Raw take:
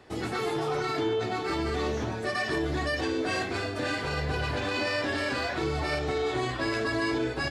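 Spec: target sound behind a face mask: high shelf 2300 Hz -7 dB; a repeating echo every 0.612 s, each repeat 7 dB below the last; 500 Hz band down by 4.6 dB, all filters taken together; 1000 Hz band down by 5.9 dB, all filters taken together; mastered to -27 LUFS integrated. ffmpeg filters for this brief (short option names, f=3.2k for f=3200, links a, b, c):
-af "equalizer=f=500:t=o:g=-4.5,equalizer=f=1k:t=o:g=-5,highshelf=f=2.3k:g=-7,aecho=1:1:612|1224|1836|2448|3060:0.447|0.201|0.0905|0.0407|0.0183,volume=5dB"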